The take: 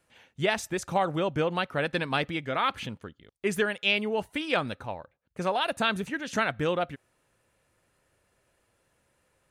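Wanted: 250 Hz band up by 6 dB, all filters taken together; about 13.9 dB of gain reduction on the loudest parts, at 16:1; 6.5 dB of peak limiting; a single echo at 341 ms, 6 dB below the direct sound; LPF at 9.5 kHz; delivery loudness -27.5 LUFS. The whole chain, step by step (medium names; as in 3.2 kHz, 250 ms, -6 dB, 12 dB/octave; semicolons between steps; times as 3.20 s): low-pass 9.5 kHz; peaking EQ 250 Hz +8.5 dB; compression 16:1, threshold -33 dBFS; peak limiter -28.5 dBFS; delay 341 ms -6 dB; trim +12 dB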